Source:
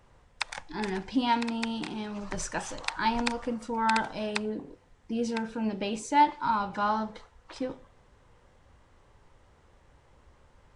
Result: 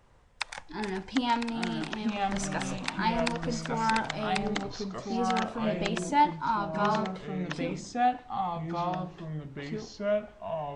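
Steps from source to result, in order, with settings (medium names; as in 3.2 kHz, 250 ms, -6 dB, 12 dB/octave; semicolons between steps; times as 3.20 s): ever faster or slower copies 672 ms, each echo -3 st, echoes 2; trim -1.5 dB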